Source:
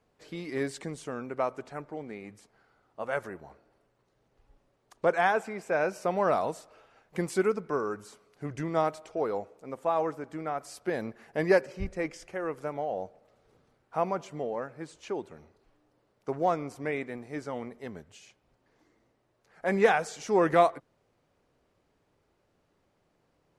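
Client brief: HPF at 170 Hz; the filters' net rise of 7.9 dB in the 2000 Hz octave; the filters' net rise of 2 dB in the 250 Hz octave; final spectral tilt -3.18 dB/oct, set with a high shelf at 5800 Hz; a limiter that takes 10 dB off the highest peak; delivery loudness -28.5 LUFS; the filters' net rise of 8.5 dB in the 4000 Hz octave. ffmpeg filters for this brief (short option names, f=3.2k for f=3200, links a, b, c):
-af "highpass=170,equalizer=f=250:t=o:g=4,equalizer=f=2k:t=o:g=8.5,equalizer=f=4k:t=o:g=9,highshelf=f=5.8k:g=-3,volume=3dB,alimiter=limit=-13dB:level=0:latency=1"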